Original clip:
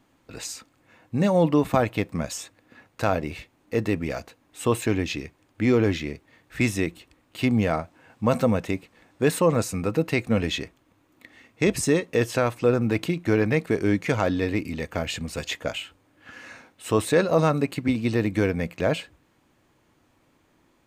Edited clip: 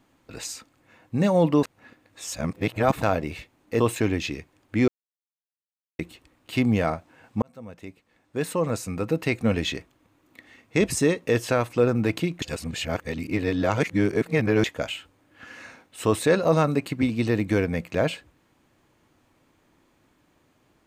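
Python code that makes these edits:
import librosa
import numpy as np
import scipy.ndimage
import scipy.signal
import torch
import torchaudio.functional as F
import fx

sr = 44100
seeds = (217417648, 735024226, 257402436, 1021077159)

y = fx.edit(x, sr, fx.reverse_span(start_s=1.63, length_s=1.39),
    fx.cut(start_s=3.8, length_s=0.86),
    fx.silence(start_s=5.74, length_s=1.11),
    fx.fade_in_span(start_s=8.28, length_s=2.05),
    fx.reverse_span(start_s=13.28, length_s=2.22), tone=tone)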